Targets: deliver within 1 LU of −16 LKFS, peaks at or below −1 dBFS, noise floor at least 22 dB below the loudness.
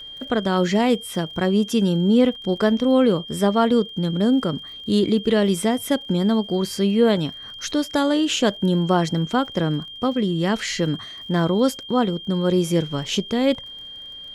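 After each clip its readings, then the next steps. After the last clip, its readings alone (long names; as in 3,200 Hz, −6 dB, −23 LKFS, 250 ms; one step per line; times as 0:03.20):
crackle rate 41 per second; interfering tone 3,200 Hz; level of the tone −35 dBFS; integrated loudness −21.0 LKFS; sample peak −5.0 dBFS; target loudness −16.0 LKFS
→ click removal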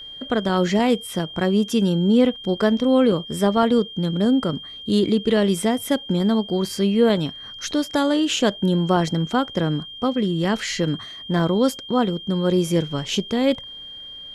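crackle rate 0.070 per second; interfering tone 3,200 Hz; level of the tone −35 dBFS
→ notch filter 3,200 Hz, Q 30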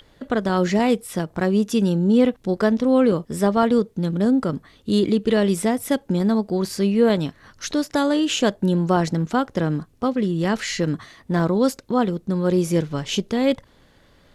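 interfering tone none found; integrated loudness −21.0 LKFS; sample peak −5.0 dBFS; target loudness −16.0 LKFS
→ level +5 dB
brickwall limiter −1 dBFS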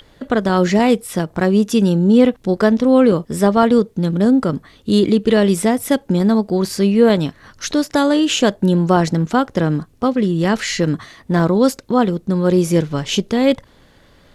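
integrated loudness −16.0 LKFS; sample peak −1.0 dBFS; background noise floor −51 dBFS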